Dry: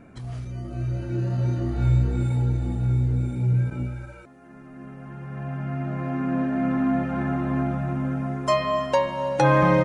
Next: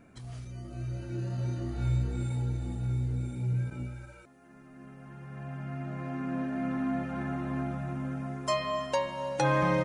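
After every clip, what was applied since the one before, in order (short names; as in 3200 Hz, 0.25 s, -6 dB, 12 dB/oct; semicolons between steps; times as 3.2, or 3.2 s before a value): high shelf 3200 Hz +9 dB; gain -8.5 dB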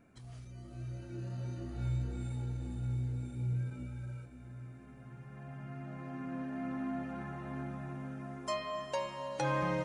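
diffused feedback echo 0.528 s, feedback 54%, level -10 dB; gain -7 dB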